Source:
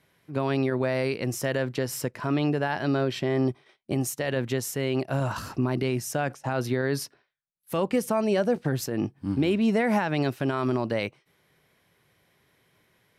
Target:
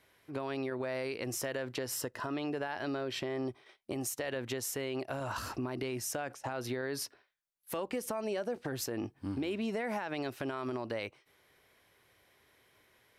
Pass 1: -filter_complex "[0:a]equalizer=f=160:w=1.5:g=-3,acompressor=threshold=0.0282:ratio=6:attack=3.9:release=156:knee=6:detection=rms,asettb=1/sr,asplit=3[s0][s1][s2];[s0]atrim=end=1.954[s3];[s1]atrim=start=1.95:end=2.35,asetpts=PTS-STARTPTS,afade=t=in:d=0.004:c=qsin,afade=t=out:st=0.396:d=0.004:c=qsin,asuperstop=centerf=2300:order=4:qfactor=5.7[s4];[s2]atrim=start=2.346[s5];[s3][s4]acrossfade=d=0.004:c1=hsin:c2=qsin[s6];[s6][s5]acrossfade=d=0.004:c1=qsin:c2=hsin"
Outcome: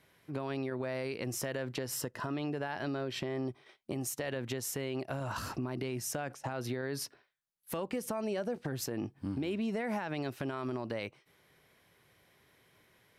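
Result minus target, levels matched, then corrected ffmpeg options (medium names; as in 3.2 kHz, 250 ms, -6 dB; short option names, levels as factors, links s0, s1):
125 Hz band +4.0 dB
-filter_complex "[0:a]equalizer=f=160:w=1.5:g=-12,acompressor=threshold=0.0282:ratio=6:attack=3.9:release=156:knee=6:detection=rms,asettb=1/sr,asplit=3[s0][s1][s2];[s0]atrim=end=1.954[s3];[s1]atrim=start=1.95:end=2.35,asetpts=PTS-STARTPTS,afade=t=in:d=0.004:c=qsin,afade=t=out:st=0.396:d=0.004:c=qsin,asuperstop=centerf=2300:order=4:qfactor=5.7[s4];[s2]atrim=start=2.346[s5];[s3][s4]acrossfade=d=0.004:c1=hsin:c2=qsin[s6];[s6][s5]acrossfade=d=0.004:c1=qsin:c2=hsin"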